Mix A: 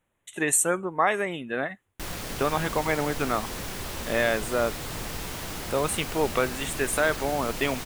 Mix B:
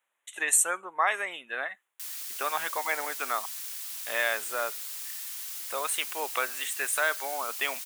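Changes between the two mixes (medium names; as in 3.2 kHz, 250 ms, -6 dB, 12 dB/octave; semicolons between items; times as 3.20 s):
background: add differentiator; master: add high-pass 910 Hz 12 dB/octave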